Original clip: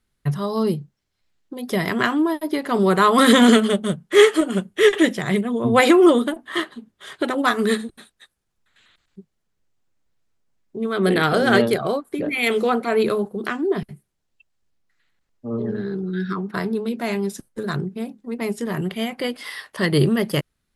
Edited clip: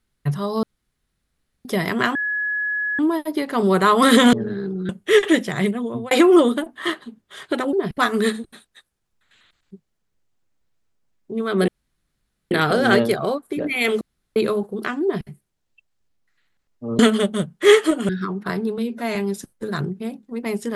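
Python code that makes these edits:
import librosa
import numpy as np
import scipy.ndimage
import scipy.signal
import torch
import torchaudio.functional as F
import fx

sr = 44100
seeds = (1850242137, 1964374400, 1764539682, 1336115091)

y = fx.edit(x, sr, fx.room_tone_fill(start_s=0.63, length_s=1.02),
    fx.insert_tone(at_s=2.15, length_s=0.84, hz=1690.0, db=-20.5),
    fx.swap(start_s=3.49, length_s=1.1, other_s=15.61, other_length_s=0.56),
    fx.fade_out_span(start_s=5.3, length_s=0.51, curve='qsin'),
    fx.insert_room_tone(at_s=11.13, length_s=0.83),
    fx.room_tone_fill(start_s=12.63, length_s=0.35),
    fx.duplicate(start_s=13.65, length_s=0.25, to_s=7.43),
    fx.stretch_span(start_s=16.86, length_s=0.25, factor=1.5), tone=tone)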